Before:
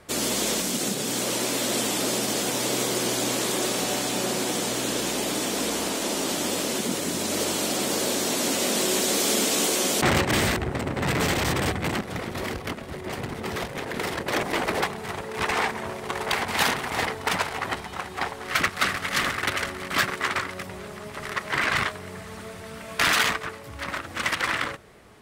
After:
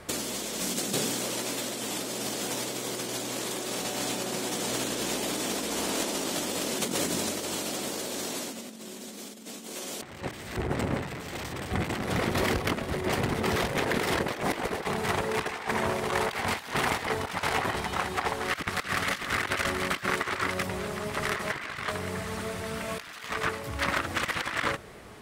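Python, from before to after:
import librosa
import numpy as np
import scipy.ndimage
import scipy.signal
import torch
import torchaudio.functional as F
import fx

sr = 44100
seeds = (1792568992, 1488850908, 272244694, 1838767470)

y = fx.peak_eq(x, sr, hz=220.0, db=12.5, octaves=0.45, at=(8.51, 9.74), fade=0.02)
y = fx.over_compress(y, sr, threshold_db=-30.0, ratio=-0.5)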